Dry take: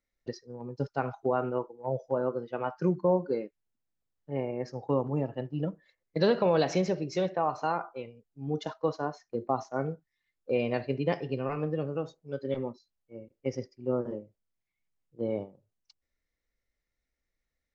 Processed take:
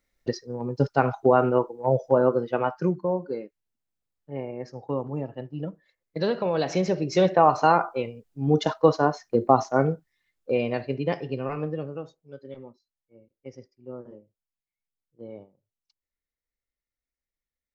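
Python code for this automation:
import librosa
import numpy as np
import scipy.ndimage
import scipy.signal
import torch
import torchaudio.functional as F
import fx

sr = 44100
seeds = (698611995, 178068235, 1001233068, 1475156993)

y = fx.gain(x, sr, db=fx.line((2.53, 9.5), (3.05, -1.0), (6.53, -1.0), (7.35, 11.0), (9.67, 11.0), (10.76, 2.0), (11.62, 2.0), (12.54, -9.5)))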